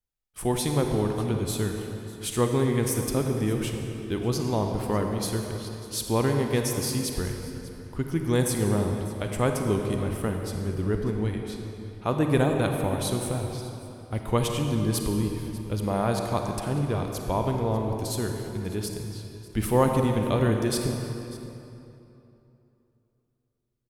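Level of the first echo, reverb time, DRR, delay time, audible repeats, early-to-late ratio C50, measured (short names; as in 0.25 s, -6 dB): -18.5 dB, 3.0 s, 3.0 dB, 0.595 s, 1, 3.5 dB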